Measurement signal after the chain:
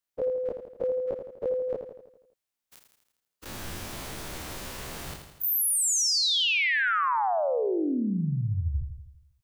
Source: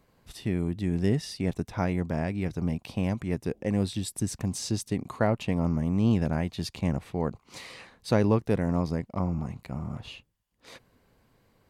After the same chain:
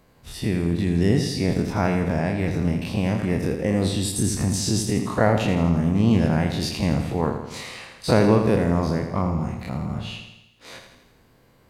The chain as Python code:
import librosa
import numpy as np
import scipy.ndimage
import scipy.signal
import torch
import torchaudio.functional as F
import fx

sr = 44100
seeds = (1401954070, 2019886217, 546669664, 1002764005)

p1 = fx.spec_dilate(x, sr, span_ms=60)
p2 = p1 + fx.echo_feedback(p1, sr, ms=82, feedback_pct=56, wet_db=-7.5, dry=0)
y = p2 * 10.0 ** (3.0 / 20.0)